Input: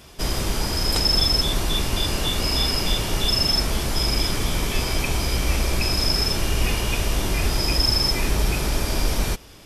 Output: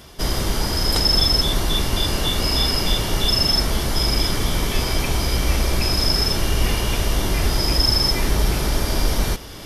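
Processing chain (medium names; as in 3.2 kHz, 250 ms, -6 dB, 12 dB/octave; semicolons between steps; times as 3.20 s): peaking EQ 7.7 kHz -4.5 dB 0.33 oct; band-stop 2.5 kHz, Q 9.7; reverse; upward compressor, threshold -30 dBFS; reverse; trim +2.5 dB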